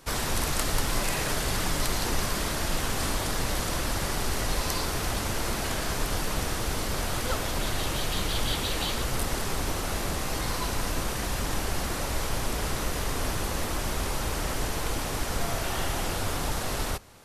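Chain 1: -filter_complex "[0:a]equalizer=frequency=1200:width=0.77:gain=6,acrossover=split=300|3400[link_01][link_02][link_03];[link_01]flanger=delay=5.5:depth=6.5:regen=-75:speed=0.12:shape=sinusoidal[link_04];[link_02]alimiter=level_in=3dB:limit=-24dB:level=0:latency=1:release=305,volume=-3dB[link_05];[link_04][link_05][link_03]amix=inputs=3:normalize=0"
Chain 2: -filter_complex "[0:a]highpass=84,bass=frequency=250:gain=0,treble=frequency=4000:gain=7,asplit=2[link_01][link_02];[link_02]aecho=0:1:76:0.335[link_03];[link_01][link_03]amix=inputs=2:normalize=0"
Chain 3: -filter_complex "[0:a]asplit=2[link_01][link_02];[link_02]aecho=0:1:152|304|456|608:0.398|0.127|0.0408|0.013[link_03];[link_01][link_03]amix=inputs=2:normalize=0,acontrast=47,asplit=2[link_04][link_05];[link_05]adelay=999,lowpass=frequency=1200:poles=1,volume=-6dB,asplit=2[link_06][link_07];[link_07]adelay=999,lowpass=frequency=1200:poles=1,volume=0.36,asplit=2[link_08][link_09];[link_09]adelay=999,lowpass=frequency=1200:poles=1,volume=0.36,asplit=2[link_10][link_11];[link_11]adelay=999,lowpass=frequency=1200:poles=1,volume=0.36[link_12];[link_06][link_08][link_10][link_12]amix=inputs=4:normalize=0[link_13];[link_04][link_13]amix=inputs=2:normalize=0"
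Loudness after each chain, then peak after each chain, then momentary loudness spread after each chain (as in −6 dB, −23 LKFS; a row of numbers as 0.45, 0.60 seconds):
−31.0, −26.0, −22.5 LKFS; −14.0, −6.0, −6.0 dBFS; 3, 3, 2 LU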